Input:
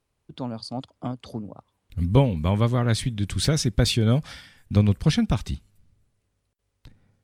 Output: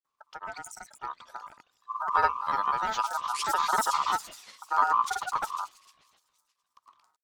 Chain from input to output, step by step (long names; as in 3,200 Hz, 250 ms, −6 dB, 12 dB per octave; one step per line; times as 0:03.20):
parametric band 920 Hz −9 dB 1.7 octaves
delay with a high-pass on its return 118 ms, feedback 67%, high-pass 2,600 Hz, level −5.5 dB
granular cloud, grains 20 per second, pitch spread up and down by 12 semitones
ring modulation 1,100 Hz
level −2 dB